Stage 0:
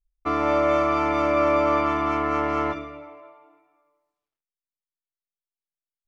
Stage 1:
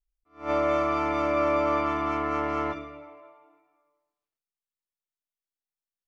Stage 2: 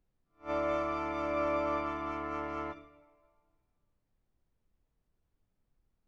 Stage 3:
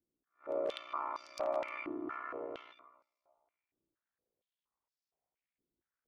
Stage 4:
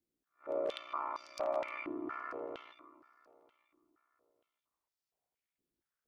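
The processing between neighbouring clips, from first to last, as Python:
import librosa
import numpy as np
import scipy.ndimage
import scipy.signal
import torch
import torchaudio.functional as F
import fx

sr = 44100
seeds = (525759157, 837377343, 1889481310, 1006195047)

y1 = fx.attack_slew(x, sr, db_per_s=190.0)
y1 = y1 * librosa.db_to_amplitude(-4.0)
y2 = fx.dmg_noise_colour(y1, sr, seeds[0], colour='brown', level_db=-56.0)
y2 = fx.upward_expand(y2, sr, threshold_db=-48.0, expansion=1.5)
y2 = y2 * librosa.db_to_amplitude(-7.0)
y3 = (np.mod(10.0 ** (23.0 / 20.0) * y2 + 1.0, 2.0) - 1.0) / 10.0 ** (23.0 / 20.0)
y3 = y3 * np.sin(2.0 * np.pi * 30.0 * np.arange(len(y3)) / sr)
y3 = fx.filter_held_bandpass(y3, sr, hz=4.3, low_hz=330.0, high_hz=5000.0)
y3 = y3 * librosa.db_to_amplitude(7.0)
y4 = fx.echo_feedback(y3, sr, ms=934, feedback_pct=27, wet_db=-24)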